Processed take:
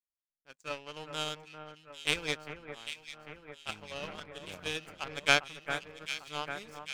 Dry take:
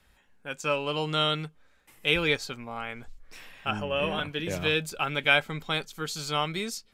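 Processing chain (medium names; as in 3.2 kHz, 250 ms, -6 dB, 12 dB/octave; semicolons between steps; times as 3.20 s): power-law waveshaper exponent 2; echo whose repeats swap between lows and highs 399 ms, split 2 kHz, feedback 80%, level -8.5 dB; trim +2.5 dB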